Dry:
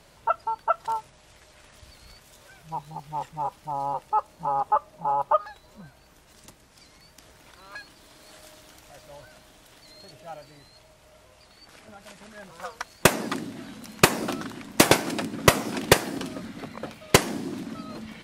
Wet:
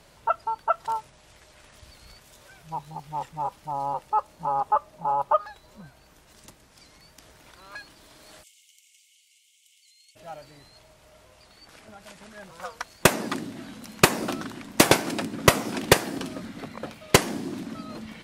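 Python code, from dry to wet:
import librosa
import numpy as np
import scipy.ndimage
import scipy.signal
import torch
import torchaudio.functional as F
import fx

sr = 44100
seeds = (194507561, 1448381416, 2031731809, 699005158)

y = fx.cheby_ripple_highpass(x, sr, hz=2100.0, ripple_db=9, at=(8.42, 10.15), fade=0.02)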